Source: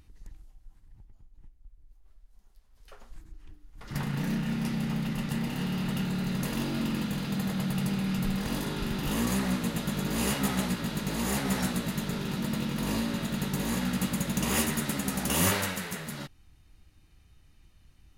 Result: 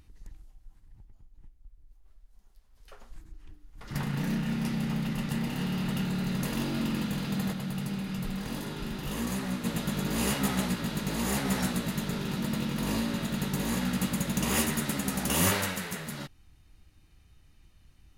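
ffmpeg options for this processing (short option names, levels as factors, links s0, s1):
-filter_complex "[0:a]asplit=3[s0][s1][s2];[s0]afade=t=out:st=7.52:d=0.02[s3];[s1]flanger=delay=1.7:depth=7.6:regen=-61:speed=1.1:shape=sinusoidal,afade=t=in:st=7.52:d=0.02,afade=t=out:st=9.64:d=0.02[s4];[s2]afade=t=in:st=9.64:d=0.02[s5];[s3][s4][s5]amix=inputs=3:normalize=0"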